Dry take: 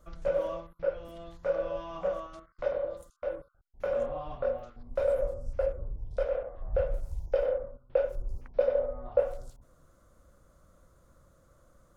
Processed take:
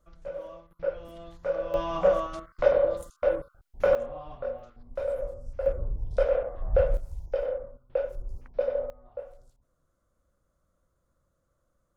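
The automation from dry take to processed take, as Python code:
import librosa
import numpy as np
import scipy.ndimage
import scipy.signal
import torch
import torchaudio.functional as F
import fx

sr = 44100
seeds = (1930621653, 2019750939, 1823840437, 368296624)

y = fx.gain(x, sr, db=fx.steps((0.0, -8.5), (0.71, 0.5), (1.74, 9.5), (3.95, -3.0), (5.66, 6.0), (6.97, -1.5), (8.9, -13.0)))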